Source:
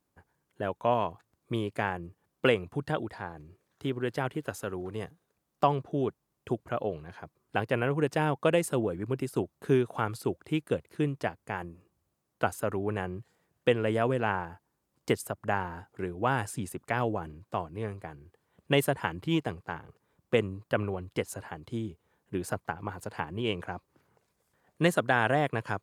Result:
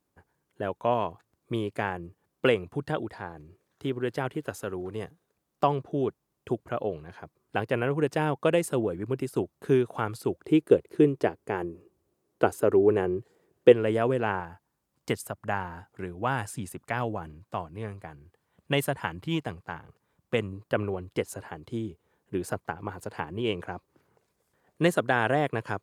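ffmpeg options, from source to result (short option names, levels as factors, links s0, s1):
-af "asetnsamples=n=441:p=0,asendcmd='10.43 equalizer g 14;13.72 equalizer g 4;14.4 equalizer g -3;20.53 equalizer g 3.5',equalizer=f=390:t=o:w=0.93:g=2.5"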